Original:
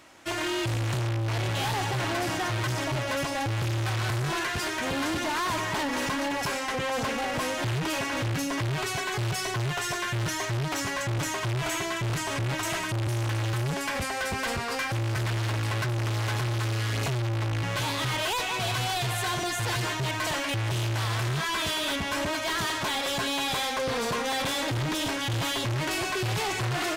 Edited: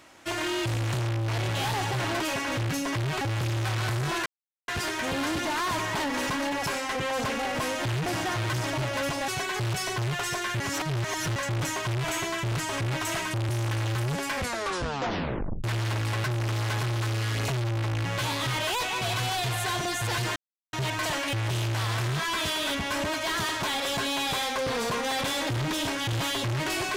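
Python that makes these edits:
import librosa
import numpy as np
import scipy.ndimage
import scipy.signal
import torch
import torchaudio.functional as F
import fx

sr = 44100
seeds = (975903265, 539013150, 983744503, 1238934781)

y = fx.edit(x, sr, fx.swap(start_s=2.2, length_s=1.22, other_s=7.85, other_length_s=1.01),
    fx.insert_silence(at_s=4.47, length_s=0.42),
    fx.reverse_span(start_s=10.18, length_s=0.76),
    fx.tape_stop(start_s=13.95, length_s=1.27),
    fx.insert_silence(at_s=19.94, length_s=0.37), tone=tone)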